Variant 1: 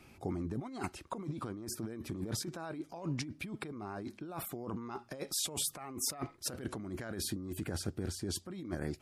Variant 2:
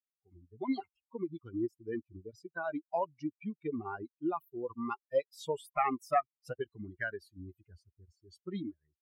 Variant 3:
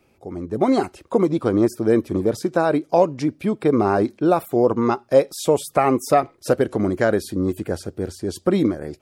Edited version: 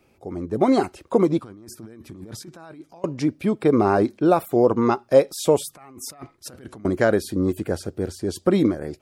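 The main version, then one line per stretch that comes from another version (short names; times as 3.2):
3
1.4–3.04 from 1
5.69–6.85 from 1
not used: 2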